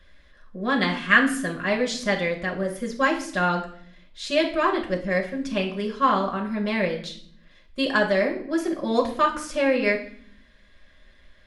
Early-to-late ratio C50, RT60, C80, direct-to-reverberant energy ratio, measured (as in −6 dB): 10.0 dB, 0.60 s, 13.5 dB, −1.5 dB